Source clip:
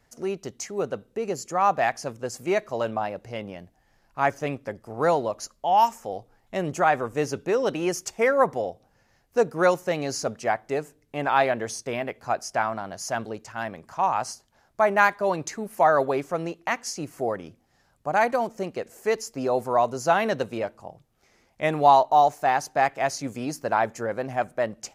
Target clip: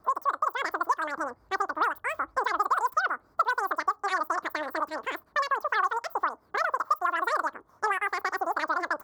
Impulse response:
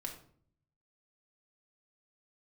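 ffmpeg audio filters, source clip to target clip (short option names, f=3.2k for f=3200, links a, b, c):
-filter_complex "[0:a]asetrate=121716,aresample=44100,highshelf=f=1.7k:t=q:w=3:g=-13.5,acrossover=split=1800|3600[a][b][c];[a]acompressor=threshold=-30dB:ratio=4[d];[b]acompressor=threshold=-38dB:ratio=4[e];[c]acompressor=threshold=-48dB:ratio=4[f];[d][e][f]amix=inputs=3:normalize=0,volume=3.5dB"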